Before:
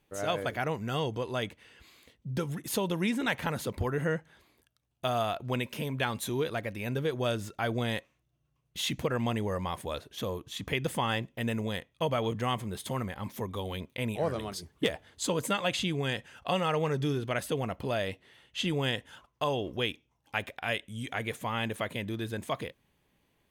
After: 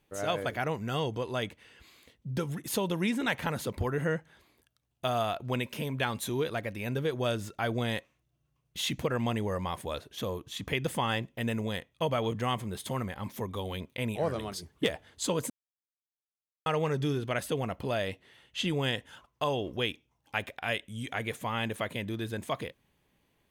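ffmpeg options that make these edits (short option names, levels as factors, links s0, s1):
-filter_complex "[0:a]asplit=3[s0][s1][s2];[s0]atrim=end=15.5,asetpts=PTS-STARTPTS,afade=t=out:st=15.496:d=0.004:c=hsin[s3];[s1]atrim=start=15.5:end=16.66,asetpts=PTS-STARTPTS,volume=0[s4];[s2]atrim=start=16.66,asetpts=PTS-STARTPTS,afade=t=in:d=0.004:c=hsin[s5];[s3][s4][s5]concat=n=3:v=0:a=1"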